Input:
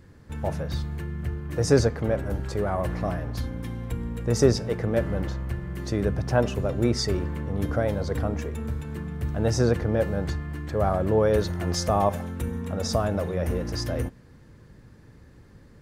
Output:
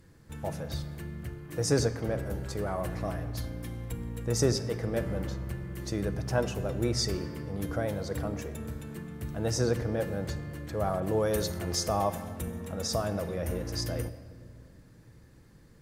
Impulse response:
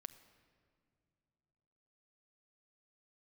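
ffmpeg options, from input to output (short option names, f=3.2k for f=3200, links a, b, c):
-filter_complex "[0:a]aemphasis=mode=production:type=cd[a];[1:a]atrim=start_sample=2205[b];[a][b]afir=irnorm=-1:irlink=0,asettb=1/sr,asplit=3[c][d][e];[c]atrim=end=11.004[f];[d]atrim=start=11:end=11.59,asetpts=PTS-STARTPTS,afade=t=in:d=0.004:c=qsin,afade=t=out:st=0.586:d=0.004:c=qsin,adynamicequalizer=threshold=0.00251:dfrequency=4300:dqfactor=0.7:tfrequency=4300:tqfactor=0.7:attack=5:release=100:ratio=0.375:range=3.5:mode=boostabove:tftype=highshelf[g];[e]atrim=start=11.586[h];[f][g]acrossfade=d=0.004:c1=hsin:c2=qsin[i];[i][h]acrossfade=d=0.004:c1=qsin:c2=hsin"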